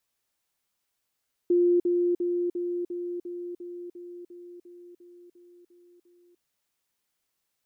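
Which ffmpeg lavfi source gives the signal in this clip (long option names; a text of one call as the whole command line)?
ffmpeg -f lavfi -i "aevalsrc='pow(10,(-18-3*floor(t/0.35))/20)*sin(2*PI*351*t)*clip(min(mod(t,0.35),0.3-mod(t,0.35))/0.005,0,1)':duration=4.9:sample_rate=44100" out.wav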